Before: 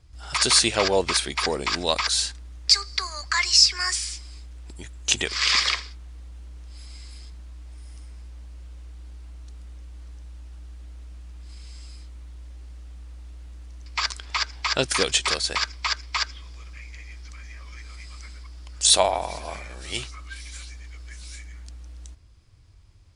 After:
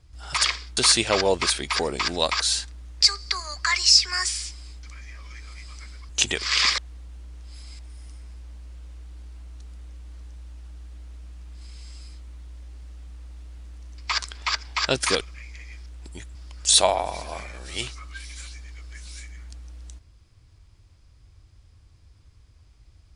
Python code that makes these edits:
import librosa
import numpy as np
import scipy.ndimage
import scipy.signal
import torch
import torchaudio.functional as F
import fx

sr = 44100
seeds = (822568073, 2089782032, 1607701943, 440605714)

y = fx.edit(x, sr, fx.swap(start_s=4.5, length_s=0.49, other_s=17.25, other_length_s=1.26),
    fx.move(start_s=5.68, length_s=0.33, to_s=0.44),
    fx.cut(start_s=7.02, length_s=0.65),
    fx.cut(start_s=15.09, length_s=1.51), tone=tone)